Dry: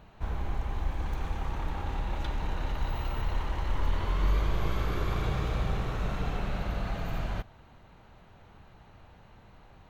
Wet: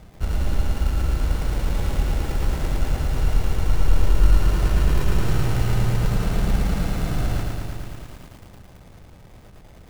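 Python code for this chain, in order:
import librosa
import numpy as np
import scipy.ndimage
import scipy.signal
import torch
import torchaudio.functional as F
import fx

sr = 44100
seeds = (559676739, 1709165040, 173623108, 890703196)

p1 = fx.tilt_shelf(x, sr, db=7.0, hz=910.0)
p2 = fx.rider(p1, sr, range_db=10, speed_s=0.5)
p3 = p1 + (p2 * 10.0 ** (-1.0 / 20.0))
p4 = fx.sample_hold(p3, sr, seeds[0], rate_hz=1400.0, jitter_pct=0)
p5 = fx.vibrato(p4, sr, rate_hz=6.4, depth_cents=10.0)
p6 = p5 + fx.echo_single(p5, sr, ms=623, db=-21.0, dry=0)
p7 = fx.echo_crushed(p6, sr, ms=111, feedback_pct=80, bits=7, wet_db=-3.5)
y = p7 * 10.0 ** (-5.0 / 20.0)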